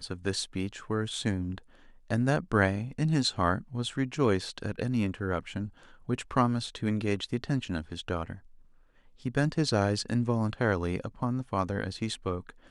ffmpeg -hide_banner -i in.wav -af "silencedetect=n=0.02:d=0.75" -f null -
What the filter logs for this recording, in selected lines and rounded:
silence_start: 8.34
silence_end: 9.26 | silence_duration: 0.91